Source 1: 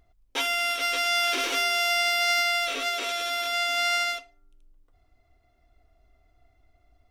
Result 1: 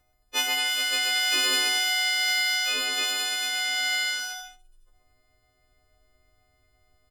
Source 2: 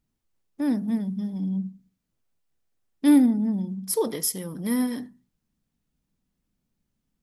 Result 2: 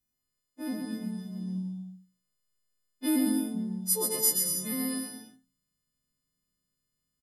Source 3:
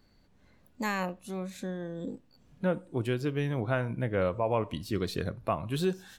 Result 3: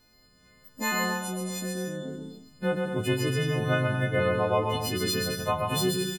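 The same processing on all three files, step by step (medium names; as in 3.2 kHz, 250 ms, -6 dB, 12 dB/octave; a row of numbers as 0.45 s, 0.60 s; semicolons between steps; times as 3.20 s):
partials quantised in pitch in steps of 3 st; bouncing-ball echo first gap 130 ms, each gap 0.7×, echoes 5; peak normalisation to -12 dBFS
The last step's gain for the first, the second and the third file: -3.0 dB, -10.0 dB, +1.0 dB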